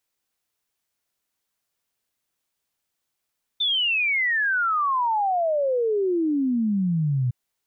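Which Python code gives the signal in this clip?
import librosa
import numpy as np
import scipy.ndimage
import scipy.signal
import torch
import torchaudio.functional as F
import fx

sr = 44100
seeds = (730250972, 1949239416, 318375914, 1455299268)

y = fx.ess(sr, length_s=3.71, from_hz=3600.0, to_hz=120.0, level_db=-19.5)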